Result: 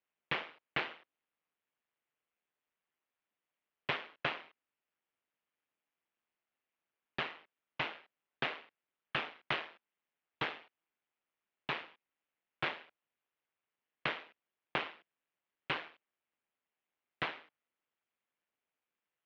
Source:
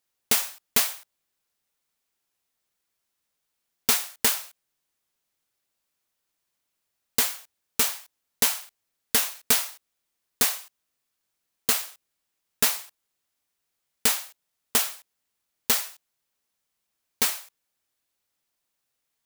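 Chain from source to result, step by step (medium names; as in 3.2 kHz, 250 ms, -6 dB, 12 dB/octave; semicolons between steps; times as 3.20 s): AM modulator 160 Hz, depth 55%; mistuned SSB -300 Hz 490–3300 Hz; trim -2 dB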